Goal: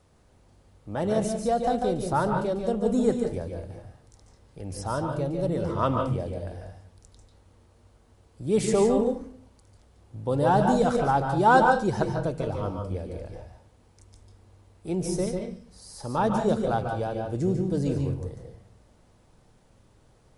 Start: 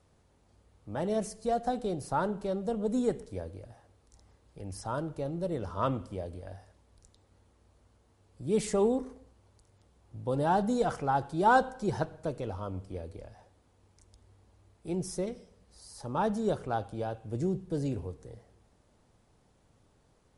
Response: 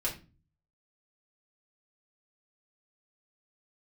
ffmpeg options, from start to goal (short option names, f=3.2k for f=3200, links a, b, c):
-filter_complex "[0:a]asplit=2[a][b];[1:a]atrim=start_sample=2205,adelay=142[c];[b][c]afir=irnorm=-1:irlink=0,volume=-8dB[d];[a][d]amix=inputs=2:normalize=0,volume=4.5dB"